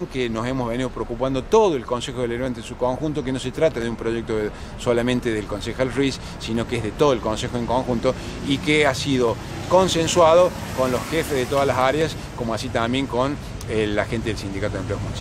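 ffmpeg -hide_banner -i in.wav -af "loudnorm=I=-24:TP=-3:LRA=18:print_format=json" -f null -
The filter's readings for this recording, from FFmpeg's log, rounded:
"input_i" : "-22.3",
"input_tp" : "-3.7",
"input_lra" : "5.4",
"input_thresh" : "-32.3",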